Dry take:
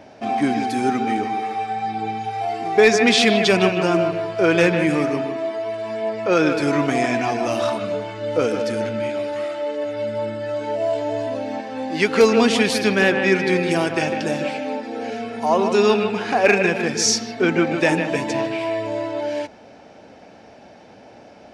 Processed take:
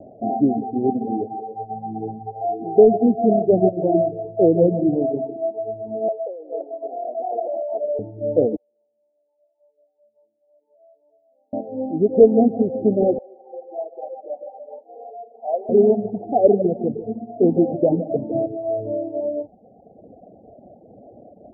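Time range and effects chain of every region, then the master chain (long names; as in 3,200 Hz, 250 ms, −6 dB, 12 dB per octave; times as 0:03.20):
0:06.08–0:07.99: compressor whose output falls as the input rises −24 dBFS + high-pass filter 500 Hz 24 dB per octave
0:08.56–0:11.53: four-pole ladder band-pass 2,100 Hz, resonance 80% + high-frequency loss of the air 480 metres
0:13.18–0:15.69: high-pass filter 590 Hz 24 dB per octave + flanger 1 Hz, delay 1.1 ms, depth 8.6 ms, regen −52%
whole clip: Butterworth low-pass 750 Hz 96 dB per octave; reverb reduction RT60 1.3 s; level +3.5 dB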